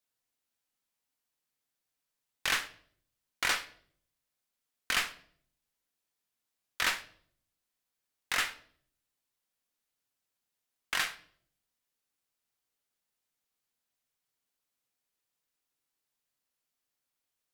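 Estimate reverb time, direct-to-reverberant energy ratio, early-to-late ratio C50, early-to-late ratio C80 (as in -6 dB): 0.60 s, 10.0 dB, 15.5 dB, 19.0 dB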